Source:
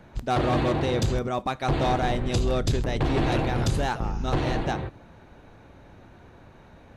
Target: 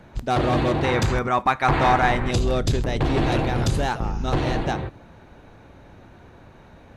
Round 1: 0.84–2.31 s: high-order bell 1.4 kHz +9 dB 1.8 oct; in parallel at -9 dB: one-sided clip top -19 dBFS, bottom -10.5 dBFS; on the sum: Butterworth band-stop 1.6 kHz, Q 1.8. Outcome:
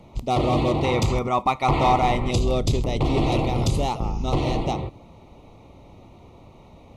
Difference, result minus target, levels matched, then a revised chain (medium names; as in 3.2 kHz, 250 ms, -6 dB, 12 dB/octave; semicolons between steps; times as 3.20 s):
2 kHz band -6.0 dB
0.84–2.31 s: high-order bell 1.4 kHz +9 dB 1.8 oct; in parallel at -9 dB: one-sided clip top -19 dBFS, bottom -10.5 dBFS